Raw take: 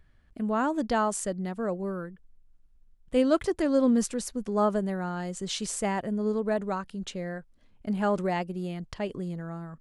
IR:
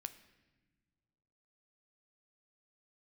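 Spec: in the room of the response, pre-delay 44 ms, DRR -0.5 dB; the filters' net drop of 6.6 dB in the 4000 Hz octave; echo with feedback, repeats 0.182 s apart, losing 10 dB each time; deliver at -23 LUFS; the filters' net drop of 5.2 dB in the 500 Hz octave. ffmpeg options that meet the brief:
-filter_complex "[0:a]equalizer=f=500:t=o:g=-6.5,equalizer=f=4k:t=o:g=-9,aecho=1:1:182|364|546|728:0.316|0.101|0.0324|0.0104,asplit=2[a][b];[1:a]atrim=start_sample=2205,adelay=44[c];[b][c]afir=irnorm=-1:irlink=0,volume=4dB[d];[a][d]amix=inputs=2:normalize=0,volume=5dB"

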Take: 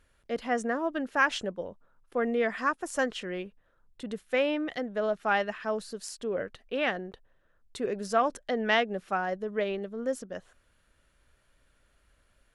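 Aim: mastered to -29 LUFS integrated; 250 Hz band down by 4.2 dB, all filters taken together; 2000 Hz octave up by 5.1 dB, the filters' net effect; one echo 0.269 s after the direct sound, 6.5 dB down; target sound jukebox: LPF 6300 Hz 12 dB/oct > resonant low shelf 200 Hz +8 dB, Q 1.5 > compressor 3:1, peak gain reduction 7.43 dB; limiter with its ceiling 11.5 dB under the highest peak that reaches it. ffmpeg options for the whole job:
-af "equalizer=f=250:t=o:g=-6,equalizer=f=2k:t=o:g=6.5,alimiter=limit=-18.5dB:level=0:latency=1,lowpass=6.3k,lowshelf=f=200:t=q:w=1.5:g=8,aecho=1:1:269:0.473,acompressor=threshold=-33dB:ratio=3,volume=7.5dB"

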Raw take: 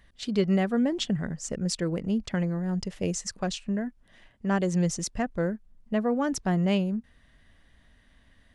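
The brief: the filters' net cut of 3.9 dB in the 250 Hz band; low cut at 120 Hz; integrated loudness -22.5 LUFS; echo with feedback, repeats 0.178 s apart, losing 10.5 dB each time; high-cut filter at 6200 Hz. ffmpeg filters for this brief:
-af "highpass=120,lowpass=6.2k,equalizer=f=250:t=o:g=-5,aecho=1:1:178|356|534:0.299|0.0896|0.0269,volume=8.5dB"

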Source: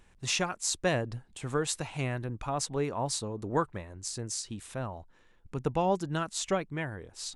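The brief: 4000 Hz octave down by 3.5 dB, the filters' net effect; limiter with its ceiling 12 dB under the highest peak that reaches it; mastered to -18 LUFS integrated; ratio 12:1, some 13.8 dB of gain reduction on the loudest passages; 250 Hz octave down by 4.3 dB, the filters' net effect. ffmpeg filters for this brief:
-af "equalizer=f=250:t=o:g=-7,equalizer=f=4k:t=o:g=-4.5,acompressor=threshold=-38dB:ratio=12,volume=27.5dB,alimiter=limit=-7.5dB:level=0:latency=1"

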